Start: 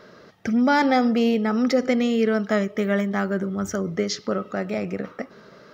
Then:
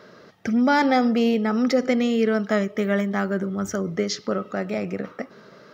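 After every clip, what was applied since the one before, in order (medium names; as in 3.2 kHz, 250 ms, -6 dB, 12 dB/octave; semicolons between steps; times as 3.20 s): high-pass 80 Hz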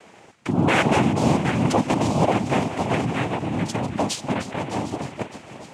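backward echo that repeats 377 ms, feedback 49%, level -11 dB; noise-vocoded speech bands 4; feedback echo behind a high-pass 305 ms, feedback 71%, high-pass 1.9 kHz, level -13 dB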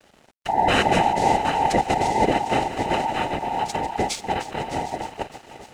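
every band turned upside down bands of 1 kHz; crossover distortion -49.5 dBFS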